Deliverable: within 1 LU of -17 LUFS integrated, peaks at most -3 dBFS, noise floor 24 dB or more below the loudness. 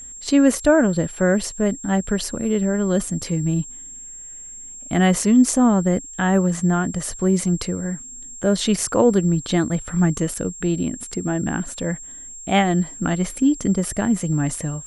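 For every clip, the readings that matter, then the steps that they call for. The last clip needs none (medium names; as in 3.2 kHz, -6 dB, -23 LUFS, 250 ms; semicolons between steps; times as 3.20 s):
steady tone 7.5 kHz; tone level -35 dBFS; loudness -20.5 LUFS; peak level -3.0 dBFS; loudness target -17.0 LUFS
-> band-stop 7.5 kHz, Q 30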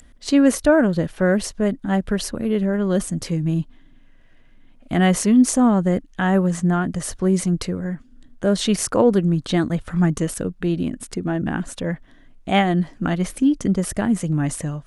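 steady tone not found; loudness -20.5 LUFS; peak level -3.0 dBFS; loudness target -17.0 LUFS
-> trim +3.5 dB; peak limiter -3 dBFS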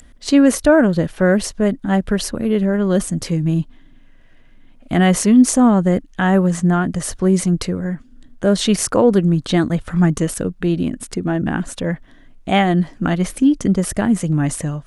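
loudness -17.0 LUFS; peak level -3.0 dBFS; noise floor -46 dBFS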